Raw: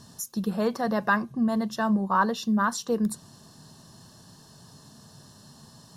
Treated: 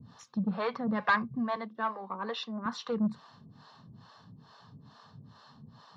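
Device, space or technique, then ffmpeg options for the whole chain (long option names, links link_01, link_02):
guitar amplifier with harmonic tremolo: -filter_complex "[0:a]adynamicequalizer=threshold=0.00447:dfrequency=2200:dqfactor=2.3:tfrequency=2200:tqfactor=2.3:attack=5:release=100:ratio=0.375:range=3:mode=boostabove:tftype=bell,acrossover=split=430[link_01][link_02];[link_01]aeval=exprs='val(0)*(1-1/2+1/2*cos(2*PI*2.3*n/s))':channel_layout=same[link_03];[link_02]aeval=exprs='val(0)*(1-1/2-1/2*cos(2*PI*2.3*n/s))':channel_layout=same[link_04];[link_03][link_04]amix=inputs=2:normalize=0,asoftclip=type=tanh:threshold=-24dB,highpass=80,equalizer=frequency=110:width_type=q:width=4:gain=4,equalizer=frequency=350:width_type=q:width=4:gain=-10,equalizer=frequency=620:width_type=q:width=4:gain=-6,equalizer=frequency=1200:width_type=q:width=4:gain=4,equalizer=frequency=1700:width_type=q:width=4:gain=-3,equalizer=frequency=2800:width_type=q:width=4:gain=-6,lowpass=frequency=3500:width=0.5412,lowpass=frequency=3500:width=1.3066,asettb=1/sr,asplit=3[link_05][link_06][link_07];[link_05]atrim=end=1.564[link_08];[link_06]atrim=start=1.56:end=2.66,asetpts=PTS-STARTPTS,afade=type=in:duration=0.004:curve=qsin,afade=type=out:start_time=1.096:duration=0.004:curve=qsin,highpass=frequency=280:width=0.5412,highpass=frequency=280:width=1.3066[link_09];[link_07]atrim=start=2.656[link_10];[link_08][link_09]acrossfade=duration=0.004:curve1=hsin:curve2=qsin[link_11];[link_11][link_10]acrossfade=duration=0.004:curve1=qsin:curve2=hsin,lowshelf=frequency=500:gain=-4,volume=5.5dB"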